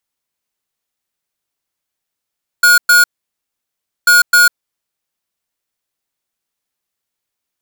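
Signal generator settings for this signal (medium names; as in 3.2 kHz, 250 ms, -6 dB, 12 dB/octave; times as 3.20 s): beep pattern square 1.44 kHz, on 0.15 s, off 0.11 s, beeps 2, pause 1.03 s, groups 2, -7.5 dBFS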